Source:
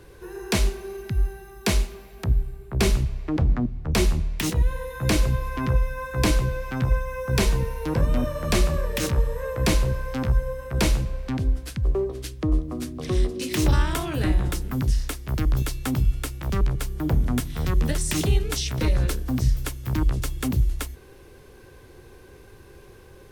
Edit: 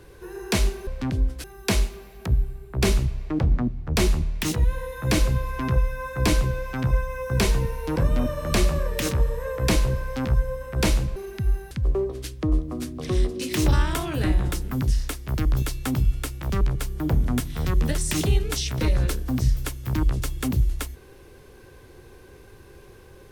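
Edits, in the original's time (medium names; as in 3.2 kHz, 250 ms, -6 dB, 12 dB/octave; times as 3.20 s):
0.87–1.42 s: swap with 11.14–11.71 s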